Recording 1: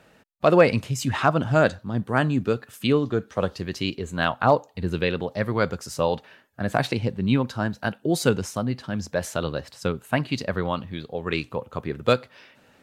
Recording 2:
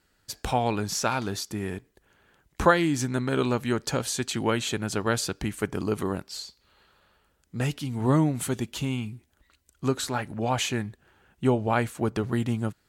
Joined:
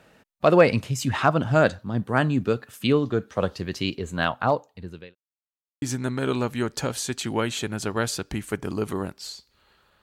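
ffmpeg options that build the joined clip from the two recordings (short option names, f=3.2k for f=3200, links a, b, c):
-filter_complex "[0:a]apad=whole_dur=10.02,atrim=end=10.02,asplit=2[a][b];[a]atrim=end=5.15,asetpts=PTS-STARTPTS,afade=t=out:st=4.15:d=1[c];[b]atrim=start=5.15:end=5.82,asetpts=PTS-STARTPTS,volume=0[d];[1:a]atrim=start=2.92:end=7.12,asetpts=PTS-STARTPTS,afade=t=in:d=0.004:c=hsin[e];[c][d][e]concat=n=3:v=0:a=1"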